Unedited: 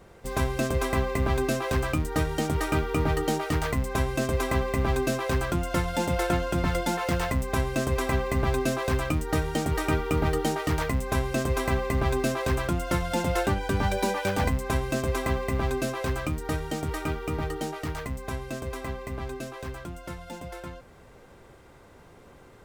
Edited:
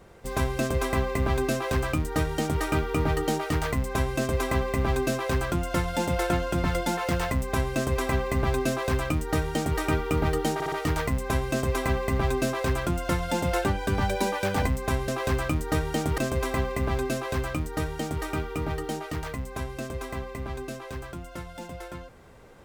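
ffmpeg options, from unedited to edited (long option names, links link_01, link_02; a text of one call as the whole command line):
ffmpeg -i in.wav -filter_complex "[0:a]asplit=6[link_01][link_02][link_03][link_04][link_05][link_06];[link_01]atrim=end=10.602[link_07];[link_02]atrim=start=10.538:end=10.602[link_08];[link_03]atrim=start=10.538:end=10.602[link_09];[link_04]atrim=start=10.538:end=14.902[link_10];[link_05]atrim=start=1.518:end=2.622[link_11];[link_06]atrim=start=14.898[link_12];[link_07][link_08]acrossfade=duration=0.004:curve1=hsin:curve2=hsin[link_13];[link_13][link_09]acrossfade=duration=0.004:curve1=hsin:curve2=hsin[link_14];[link_14][link_10]acrossfade=duration=0.004:curve1=hsin:curve2=hsin[link_15];[link_15][link_11]acrossfade=duration=0.004:curve1=hsin:curve2=hsin[link_16];[link_16][link_12]acrossfade=duration=0.004:curve1=hsin:curve2=hsin" out.wav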